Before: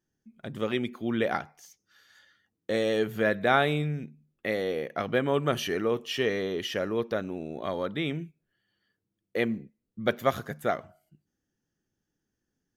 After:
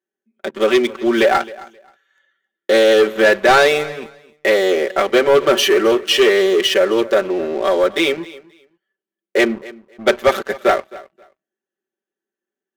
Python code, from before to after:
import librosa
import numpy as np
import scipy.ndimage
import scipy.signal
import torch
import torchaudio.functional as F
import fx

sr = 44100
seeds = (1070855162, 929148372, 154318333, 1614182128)

y = fx.wiener(x, sr, points=9)
y = scipy.signal.sosfilt(scipy.signal.butter(4, 340.0, 'highpass', fs=sr, output='sos'), y)
y = fx.peak_eq(y, sr, hz=1000.0, db=-4.5, octaves=1.9)
y = y + 0.99 * np.pad(y, (int(5.2 * sr / 1000.0), 0))[:len(y)]
y = fx.leveller(y, sr, passes=3)
y = fx.echo_feedback(y, sr, ms=265, feedback_pct=19, wet_db=-20.0)
y = F.gain(torch.from_numpy(y), 6.0).numpy()